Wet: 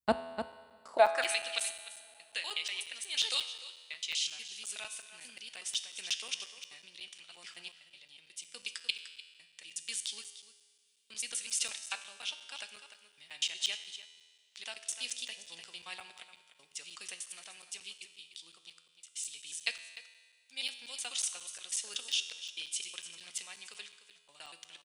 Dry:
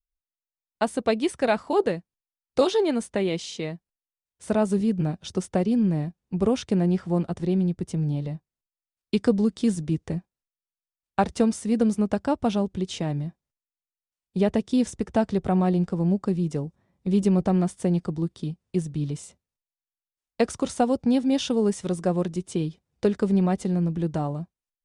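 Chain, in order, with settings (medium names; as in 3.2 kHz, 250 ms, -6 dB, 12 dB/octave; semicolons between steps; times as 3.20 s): slices played last to first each 122 ms, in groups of 7; treble shelf 6.2 kHz +9.5 dB; delay 299 ms -12 dB; high-pass sweep 61 Hz -> 2.8 kHz, 0.39–1.37 s; peaking EQ 60 Hz +9.5 dB 1.6 oct; two-slope reverb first 0.39 s, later 4.5 s, from -19 dB, DRR 16.5 dB; random-step tremolo; feedback comb 83 Hz, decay 1.6 s, harmonics all, mix 70%; crackling interface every 0.18 s, samples 256, zero, from 0.52 s; trim +8 dB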